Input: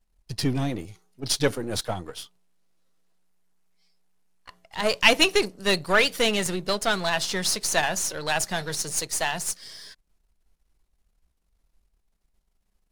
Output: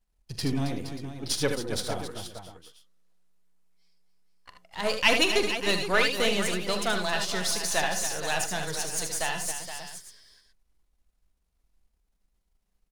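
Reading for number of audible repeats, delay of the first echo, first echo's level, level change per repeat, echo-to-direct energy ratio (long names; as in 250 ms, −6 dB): 5, 44 ms, −12.5 dB, repeats not evenly spaced, −3.0 dB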